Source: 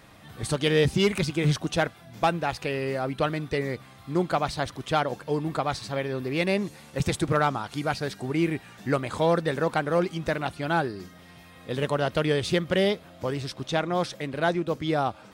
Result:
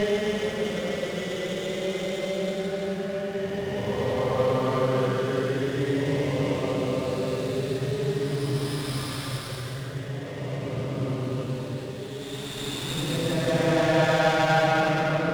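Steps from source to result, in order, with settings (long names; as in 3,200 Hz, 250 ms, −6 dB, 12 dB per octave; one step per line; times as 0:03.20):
delay that swaps between a low-pass and a high-pass 113 ms, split 1,100 Hz, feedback 67%, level −4 dB
extreme stretch with random phases 19×, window 0.10 s, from 0:13.02
windowed peak hold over 5 samples
level +2.5 dB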